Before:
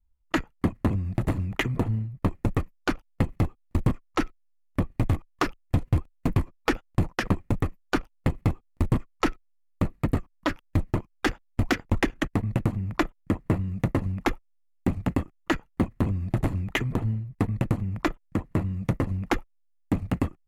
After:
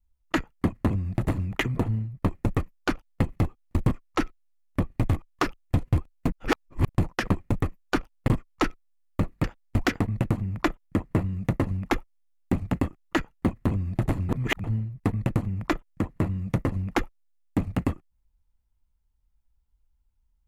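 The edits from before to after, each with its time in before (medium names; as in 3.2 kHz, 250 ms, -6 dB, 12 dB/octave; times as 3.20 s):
6.32–6.89 s: reverse
8.28–8.90 s: delete
10.06–11.28 s: delete
11.84–12.35 s: delete
16.64–16.99 s: reverse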